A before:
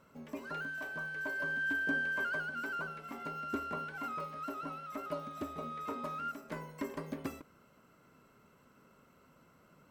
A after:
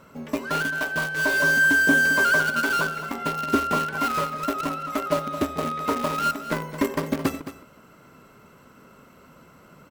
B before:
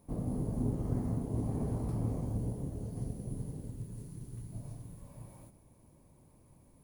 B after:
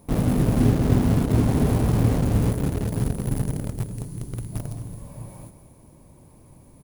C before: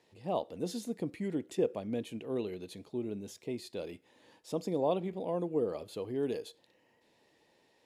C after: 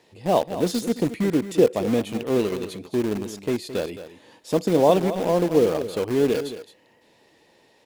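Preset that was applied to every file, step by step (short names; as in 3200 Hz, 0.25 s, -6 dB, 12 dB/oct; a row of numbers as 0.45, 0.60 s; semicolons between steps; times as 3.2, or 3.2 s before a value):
in parallel at -8 dB: bit-crush 6-bit; on the sum: echo 0.217 s -12.5 dB; match loudness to -23 LUFS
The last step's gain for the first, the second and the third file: +12.5, +11.5, +10.0 dB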